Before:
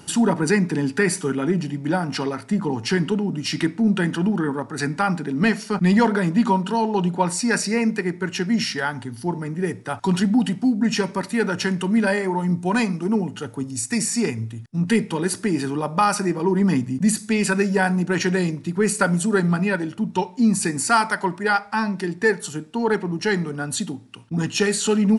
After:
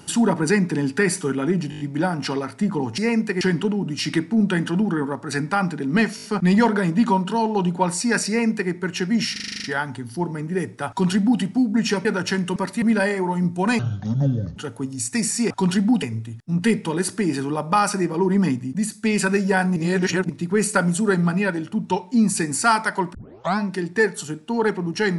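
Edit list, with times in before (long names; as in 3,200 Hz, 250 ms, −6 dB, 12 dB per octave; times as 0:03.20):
0:01.70: stutter 0.02 s, 6 plays
0:05.63: stutter 0.02 s, 5 plays
0:07.67–0:08.10: duplicate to 0:02.88
0:08.71: stutter 0.04 s, 9 plays
0:09.96–0:10.48: duplicate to 0:14.28
0:11.12–0:11.38: move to 0:11.89
0:12.86–0:13.34: play speed 62%
0:16.63–0:17.29: fade out, to −9 dB
0:18.02–0:18.55: reverse
0:21.40: tape start 0.44 s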